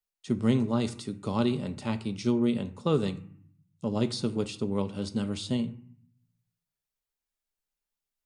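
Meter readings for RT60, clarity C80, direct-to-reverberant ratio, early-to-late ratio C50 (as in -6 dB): 0.60 s, 18.5 dB, 7.5 dB, 15.5 dB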